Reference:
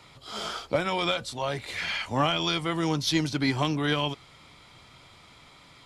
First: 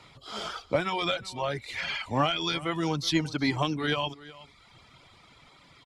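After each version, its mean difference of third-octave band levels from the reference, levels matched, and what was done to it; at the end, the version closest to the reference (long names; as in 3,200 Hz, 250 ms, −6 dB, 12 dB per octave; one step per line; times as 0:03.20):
3.0 dB: reverb reduction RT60 0.98 s
high-shelf EQ 9,800 Hz −10 dB
single-tap delay 372 ms −19 dB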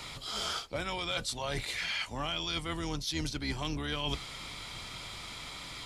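8.0 dB: sub-octave generator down 2 octaves, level −1 dB
high-shelf EQ 2,400 Hz +8.5 dB
reversed playback
downward compressor 12 to 1, threshold −37 dBFS, peak gain reduction 20.5 dB
reversed playback
level +5.5 dB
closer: first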